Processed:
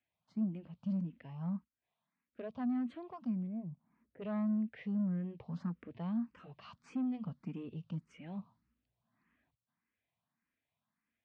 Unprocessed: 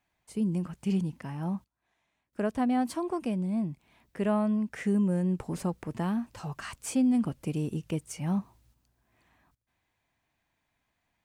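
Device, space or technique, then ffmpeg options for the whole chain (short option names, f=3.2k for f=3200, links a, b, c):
barber-pole phaser into a guitar amplifier: -filter_complex "[0:a]asplit=2[a][b];[b]afreqshift=1.7[c];[a][c]amix=inputs=2:normalize=1,asoftclip=type=tanh:threshold=-26.5dB,highpass=86,equalizer=f=170:t=q:w=4:g=5,equalizer=f=230:t=q:w=4:g=8,equalizer=f=360:t=q:w=4:g=-5,equalizer=f=820:t=q:w=4:g=-3,equalizer=f=1.2k:t=q:w=4:g=3,lowpass=f=4k:w=0.5412,lowpass=f=4k:w=1.3066,asettb=1/sr,asplit=3[d][e][f];[d]atrim=end=3.474[g];[e]atrim=start=3.47:end=4.22,asetpts=PTS-STARTPTS,afade=t=in:d=0.004:c=qsin,afade=t=out:st=0.746:d=0.004:c=qsin,lowpass=1.2k[h];[f]atrim=start=4.216[i];[g][h]acrossfade=d=0.004:c1=hsin:c2=qsin[j];[j][i]acrossfade=d=0.004:c1=qsin:c2=hsin,volume=-8.5dB"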